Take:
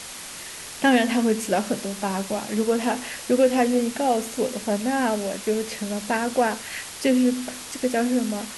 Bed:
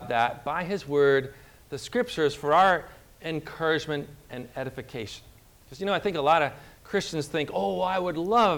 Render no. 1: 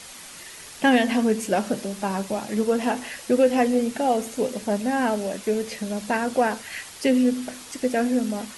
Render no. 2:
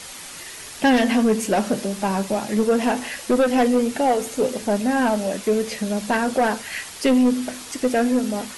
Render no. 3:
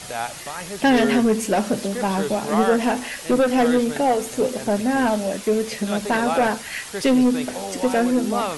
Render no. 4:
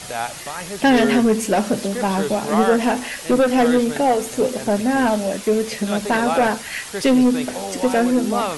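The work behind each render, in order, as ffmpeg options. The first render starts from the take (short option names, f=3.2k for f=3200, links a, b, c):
-af "afftdn=nr=6:nf=-38"
-af "aeval=exprs='0.398*sin(PI/2*1.78*val(0)/0.398)':c=same,flanger=delay=2.2:depth=2.9:regen=-79:speed=0.24:shape=sinusoidal"
-filter_complex "[1:a]volume=-4dB[a];[0:a][a]amix=inputs=2:normalize=0"
-af "volume=2dB"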